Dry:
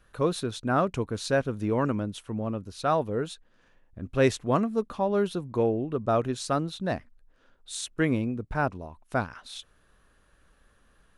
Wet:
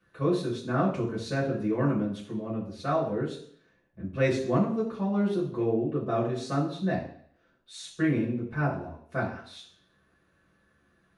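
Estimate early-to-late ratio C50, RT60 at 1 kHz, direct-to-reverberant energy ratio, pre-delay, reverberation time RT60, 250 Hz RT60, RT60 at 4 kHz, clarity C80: 7.0 dB, 0.60 s, −6.5 dB, 3 ms, 0.60 s, 0.60 s, 0.65 s, 11.0 dB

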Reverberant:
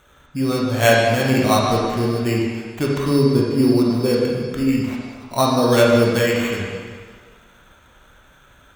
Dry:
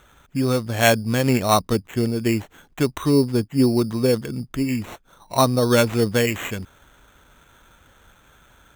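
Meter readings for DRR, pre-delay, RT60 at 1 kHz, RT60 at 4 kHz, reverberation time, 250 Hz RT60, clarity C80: −3.5 dB, 17 ms, 1.8 s, 1.6 s, 1.7 s, 1.5 s, 1.5 dB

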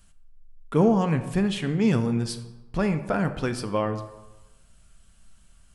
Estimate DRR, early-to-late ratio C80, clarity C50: 8.5 dB, 13.5 dB, 12.0 dB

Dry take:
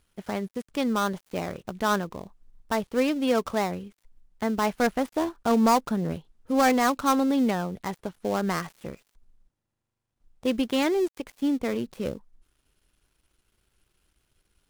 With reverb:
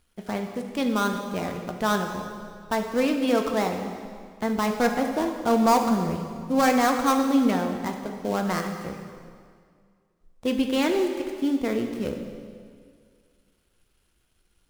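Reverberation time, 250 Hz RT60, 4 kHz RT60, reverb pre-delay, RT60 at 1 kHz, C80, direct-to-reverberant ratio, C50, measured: 2.1 s, 2.2 s, 1.8 s, 3 ms, 2.0 s, 7.0 dB, 3.5 dB, 6.0 dB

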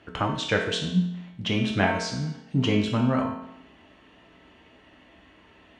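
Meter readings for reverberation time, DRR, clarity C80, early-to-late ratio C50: 0.80 s, −0.5 dB, 7.5 dB, 4.5 dB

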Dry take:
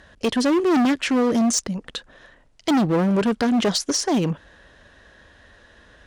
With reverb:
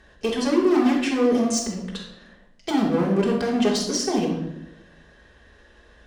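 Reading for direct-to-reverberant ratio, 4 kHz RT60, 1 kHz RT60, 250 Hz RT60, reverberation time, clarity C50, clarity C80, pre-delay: −5.0 dB, 0.65 s, 0.75 s, 1.1 s, 0.85 s, 3.5 dB, 7.5 dB, 3 ms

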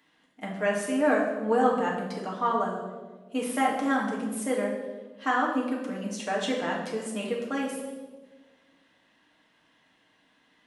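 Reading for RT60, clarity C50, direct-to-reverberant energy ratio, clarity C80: 1.4 s, 4.0 dB, −3.5 dB, 6.0 dB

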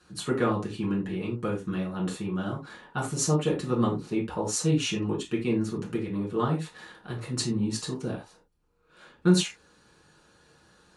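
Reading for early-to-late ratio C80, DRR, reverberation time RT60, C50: 15.5 dB, −4.0 dB, non-exponential decay, 9.0 dB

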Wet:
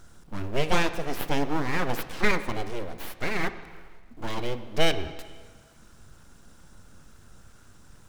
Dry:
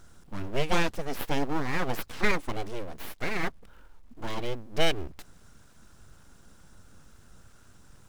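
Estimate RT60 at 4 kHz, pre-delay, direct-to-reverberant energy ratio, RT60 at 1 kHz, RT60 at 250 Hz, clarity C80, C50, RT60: 1.5 s, 7 ms, 10.5 dB, 1.6 s, 1.6 s, 13.5 dB, 12.5 dB, 1.6 s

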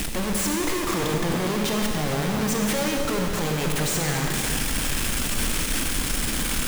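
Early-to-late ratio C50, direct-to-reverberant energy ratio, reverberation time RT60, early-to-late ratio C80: 2.0 dB, 1.0 dB, 2.6 s, 3.0 dB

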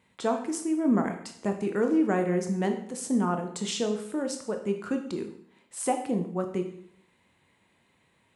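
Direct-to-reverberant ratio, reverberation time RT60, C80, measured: 4.5 dB, 0.70 s, 11.5 dB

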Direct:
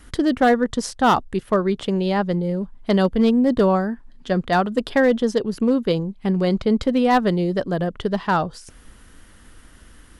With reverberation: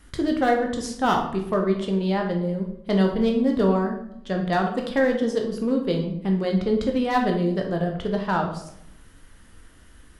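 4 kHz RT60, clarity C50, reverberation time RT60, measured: 0.50 s, 6.0 dB, 0.75 s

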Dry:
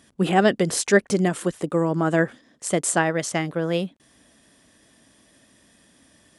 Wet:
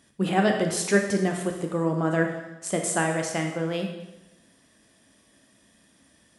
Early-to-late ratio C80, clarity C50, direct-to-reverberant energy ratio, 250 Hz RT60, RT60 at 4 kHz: 7.5 dB, 5.0 dB, 2.5 dB, 1.0 s, 0.90 s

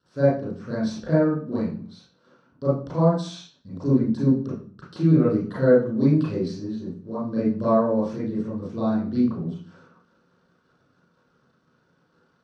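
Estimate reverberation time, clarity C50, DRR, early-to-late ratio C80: 0.45 s, −0.5 dB, −11.0 dB, 8.0 dB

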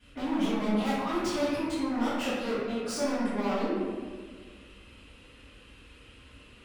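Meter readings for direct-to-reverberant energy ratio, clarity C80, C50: −15.5 dB, 0.0 dB, −3.0 dB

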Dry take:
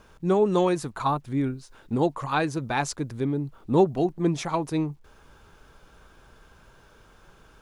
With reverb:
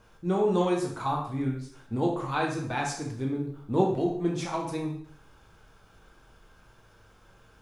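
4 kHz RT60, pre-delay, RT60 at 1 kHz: 0.55 s, 5 ms, 0.60 s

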